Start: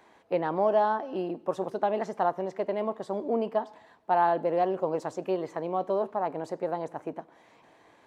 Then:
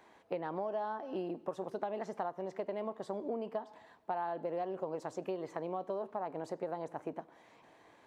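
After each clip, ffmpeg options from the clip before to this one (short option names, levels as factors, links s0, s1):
-af "acompressor=threshold=0.0282:ratio=6,volume=0.708"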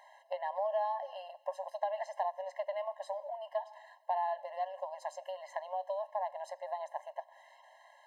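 -af "asubboost=boost=6:cutoff=140,aeval=exprs='val(0)+0.000282*(sin(2*PI*50*n/s)+sin(2*PI*2*50*n/s)/2+sin(2*PI*3*50*n/s)/3+sin(2*PI*4*50*n/s)/4+sin(2*PI*5*50*n/s)/5)':c=same,afftfilt=real='re*eq(mod(floor(b*sr/1024/540),2),1)':imag='im*eq(mod(floor(b*sr/1024/540),2),1)':win_size=1024:overlap=0.75,volume=1.78"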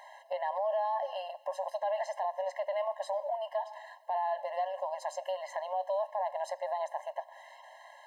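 -af "alimiter=level_in=2.37:limit=0.0631:level=0:latency=1:release=20,volume=0.422,volume=2.24"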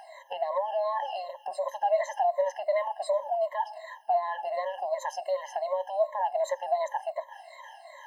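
-af "afftfilt=real='re*pow(10,22/40*sin(2*PI*(1.1*log(max(b,1)*sr/1024/100)/log(2)-(-2.7)*(pts-256)/sr)))':imag='im*pow(10,22/40*sin(2*PI*(1.1*log(max(b,1)*sr/1024/100)/log(2)-(-2.7)*(pts-256)/sr)))':win_size=1024:overlap=0.75"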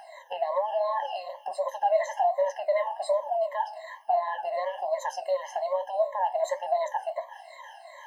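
-af "flanger=delay=9.3:depth=8.6:regen=-61:speed=1.2:shape=triangular,volume=1.88"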